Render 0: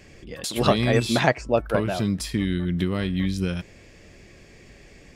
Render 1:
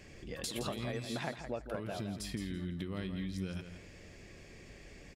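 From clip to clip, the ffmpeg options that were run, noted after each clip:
-filter_complex "[0:a]acompressor=threshold=0.0251:ratio=5,asplit=2[s0][s1];[s1]aecho=0:1:167|334|501:0.355|0.071|0.0142[s2];[s0][s2]amix=inputs=2:normalize=0,volume=0.562"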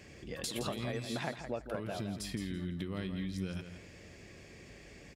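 -af "highpass=55,volume=1.12"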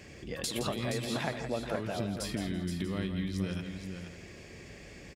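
-af "aecho=1:1:472:0.422,volume=1.5"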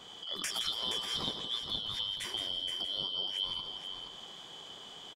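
-filter_complex "[0:a]afftfilt=real='real(if(lt(b,272),68*(eq(floor(b/68),0)*1+eq(floor(b/68),1)*3+eq(floor(b/68),2)*0+eq(floor(b/68),3)*2)+mod(b,68),b),0)':imag='imag(if(lt(b,272),68*(eq(floor(b/68),0)*1+eq(floor(b/68),1)*3+eq(floor(b/68),2)*0+eq(floor(b/68),3)*2)+mod(b,68),b),0)':win_size=2048:overlap=0.75,asplit=7[s0][s1][s2][s3][s4][s5][s6];[s1]adelay=103,afreqshift=110,volume=0.133[s7];[s2]adelay=206,afreqshift=220,volume=0.0804[s8];[s3]adelay=309,afreqshift=330,volume=0.0479[s9];[s4]adelay=412,afreqshift=440,volume=0.0288[s10];[s5]adelay=515,afreqshift=550,volume=0.0174[s11];[s6]adelay=618,afreqshift=660,volume=0.0104[s12];[s0][s7][s8][s9][s10][s11][s12]amix=inputs=7:normalize=0,adynamicequalizer=threshold=0.00708:dfrequency=2500:dqfactor=0.7:tfrequency=2500:tqfactor=0.7:attack=5:release=100:ratio=0.375:range=2:mode=cutabove:tftype=highshelf"

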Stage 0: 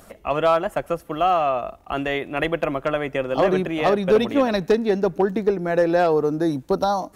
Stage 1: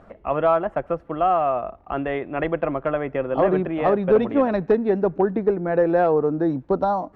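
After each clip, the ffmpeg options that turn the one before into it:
-af "lowpass=1600"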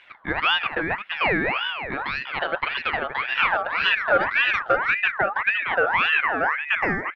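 -filter_complex "[0:a]asplit=2[s0][s1];[s1]adelay=349.9,volume=0.447,highshelf=f=4000:g=-7.87[s2];[s0][s2]amix=inputs=2:normalize=0,aeval=exprs='val(0)*sin(2*PI*1600*n/s+1600*0.4/1.8*sin(2*PI*1.8*n/s))':c=same"

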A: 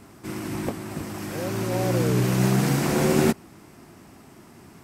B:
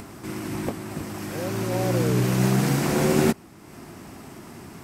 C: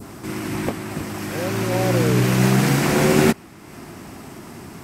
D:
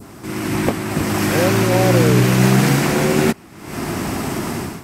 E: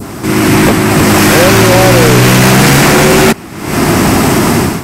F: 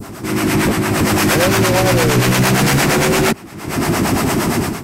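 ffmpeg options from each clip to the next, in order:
-af "acompressor=mode=upward:threshold=0.0224:ratio=2.5"
-af "adynamicequalizer=threshold=0.00794:dfrequency=2200:dqfactor=0.77:tfrequency=2200:tqfactor=0.77:attack=5:release=100:ratio=0.375:range=2:mode=boostabove:tftype=bell,volume=1.58"
-af "dynaudnorm=f=140:g=5:m=6.31,volume=0.891"
-af "apsyclip=7.08,volume=0.841"
-filter_complex "[0:a]acrossover=split=430[s0][s1];[s0]aeval=exprs='val(0)*(1-0.7/2+0.7/2*cos(2*PI*8.7*n/s))':c=same[s2];[s1]aeval=exprs='val(0)*(1-0.7/2-0.7/2*cos(2*PI*8.7*n/s))':c=same[s3];[s2][s3]amix=inputs=2:normalize=0,volume=0.596"

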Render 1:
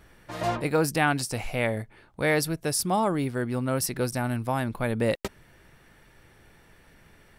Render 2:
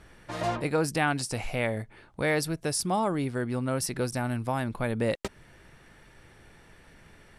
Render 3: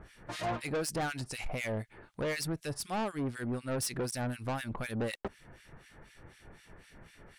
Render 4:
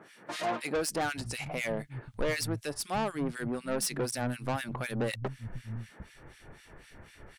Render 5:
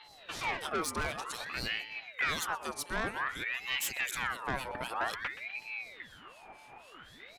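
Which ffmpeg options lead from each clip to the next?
-filter_complex "[0:a]lowpass=f=11000:w=0.5412,lowpass=f=11000:w=1.3066,asplit=2[s0][s1];[s1]acompressor=threshold=0.0224:ratio=6,volume=1[s2];[s0][s2]amix=inputs=2:normalize=0,volume=0.596"
-filter_complex "[0:a]acrossover=split=1700[s0][s1];[s0]aeval=exprs='val(0)*(1-1/2+1/2*cos(2*PI*4*n/s))':c=same[s2];[s1]aeval=exprs='val(0)*(1-1/2-1/2*cos(2*PI*4*n/s))':c=same[s3];[s2][s3]amix=inputs=2:normalize=0,asoftclip=type=tanh:threshold=0.0224,volume=1.5"
-filter_complex "[0:a]acrossover=split=170[s0][s1];[s0]adelay=750[s2];[s2][s1]amix=inputs=2:normalize=0,volume=1.41"
-filter_complex "[0:a]asplit=2[s0][s1];[s1]adelay=124,lowpass=f=2100:p=1,volume=0.237,asplit=2[s2][s3];[s3]adelay=124,lowpass=f=2100:p=1,volume=0.49,asplit=2[s4][s5];[s5]adelay=124,lowpass=f=2100:p=1,volume=0.49,asplit=2[s6][s7];[s7]adelay=124,lowpass=f=2100:p=1,volume=0.49,asplit=2[s8][s9];[s9]adelay=124,lowpass=f=2100:p=1,volume=0.49[s10];[s0][s2][s4][s6][s8][s10]amix=inputs=6:normalize=0,aeval=exprs='val(0)+0.00251*sin(2*PI*1600*n/s)':c=same,aeval=exprs='val(0)*sin(2*PI*1600*n/s+1600*0.55/0.53*sin(2*PI*0.53*n/s))':c=same"

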